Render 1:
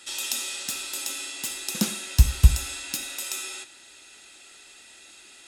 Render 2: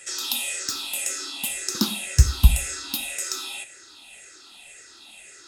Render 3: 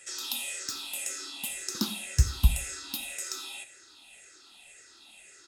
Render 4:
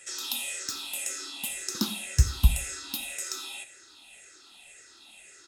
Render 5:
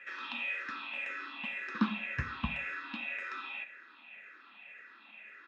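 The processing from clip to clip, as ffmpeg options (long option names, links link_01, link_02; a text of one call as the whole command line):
ffmpeg -i in.wav -af "afftfilt=real='re*pow(10,15/40*sin(2*PI*(0.51*log(max(b,1)*sr/1024/100)/log(2)-(-1.9)*(pts-256)/sr)))':imag='im*pow(10,15/40*sin(2*PI*(0.51*log(max(b,1)*sr/1024/100)/log(2)-(-1.9)*(pts-256)/sr)))':win_size=1024:overlap=0.75" out.wav
ffmpeg -i in.wav -af "aecho=1:1:84|168|252:0.0891|0.0348|0.0136,volume=-7dB" out.wav
ffmpeg -i in.wav -af "bandreject=frequency=4700:width=24,volume=1.5dB" out.wav
ffmpeg -i in.wav -af "highpass=200,equalizer=frequency=220:width_type=q:width=4:gain=7,equalizer=frequency=370:width_type=q:width=4:gain=-8,equalizer=frequency=770:width_type=q:width=4:gain=-4,equalizer=frequency=1100:width_type=q:width=4:gain=10,equalizer=frequency=1700:width_type=q:width=4:gain=10,equalizer=frequency=2400:width_type=q:width=4:gain=8,lowpass=frequency=2600:width=0.5412,lowpass=frequency=2600:width=1.3066,volume=-1.5dB" out.wav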